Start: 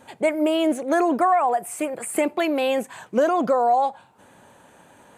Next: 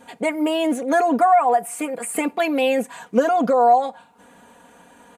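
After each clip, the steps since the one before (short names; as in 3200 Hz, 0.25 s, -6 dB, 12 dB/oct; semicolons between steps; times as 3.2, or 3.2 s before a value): comb 4.2 ms, depth 79%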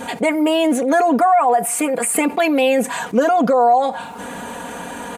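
fast leveller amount 50%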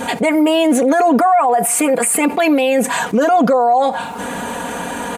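maximiser +11.5 dB; gain -5.5 dB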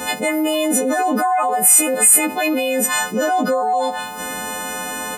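frequency quantiser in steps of 3 st; gain -5.5 dB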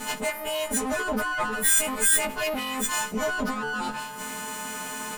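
minimum comb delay 4.7 ms; gain -6.5 dB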